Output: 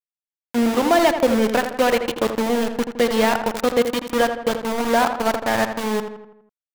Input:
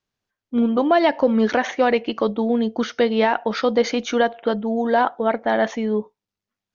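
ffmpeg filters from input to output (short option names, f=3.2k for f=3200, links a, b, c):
-filter_complex "[0:a]aeval=exprs='val(0)*gte(abs(val(0)),0.106)':c=same,asplit=2[a][b];[b]adelay=82,lowpass=f=2.8k:p=1,volume=-8dB,asplit=2[c][d];[d]adelay=82,lowpass=f=2.8k:p=1,volume=0.53,asplit=2[e][f];[f]adelay=82,lowpass=f=2.8k:p=1,volume=0.53,asplit=2[g][h];[h]adelay=82,lowpass=f=2.8k:p=1,volume=0.53,asplit=2[i][j];[j]adelay=82,lowpass=f=2.8k:p=1,volume=0.53,asplit=2[k][l];[l]adelay=82,lowpass=f=2.8k:p=1,volume=0.53[m];[a][c][e][g][i][k][m]amix=inputs=7:normalize=0"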